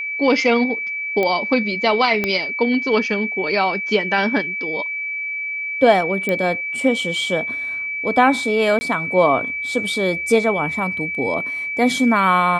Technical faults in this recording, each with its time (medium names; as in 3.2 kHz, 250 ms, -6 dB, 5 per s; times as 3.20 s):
whine 2.3 kHz -23 dBFS
1.23 s: pop -9 dBFS
2.24 s: pop -7 dBFS
6.29 s: pop -9 dBFS
8.79–8.81 s: dropout 20 ms